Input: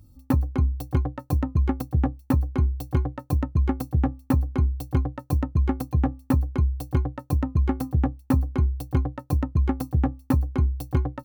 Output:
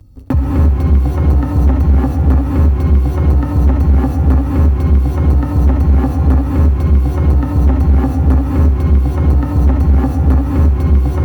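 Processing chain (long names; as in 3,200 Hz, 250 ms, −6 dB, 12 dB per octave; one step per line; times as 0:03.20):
low-shelf EQ 63 Hz +6.5 dB
reverb whose tail is shaped and stops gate 360 ms rising, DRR −4 dB
leveller curve on the samples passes 2
high-shelf EQ 6,400 Hz −11 dB
feedback echo with a high-pass in the loop 67 ms, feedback 81%, level −14 dB
multiband upward and downward compressor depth 40%
level −1.5 dB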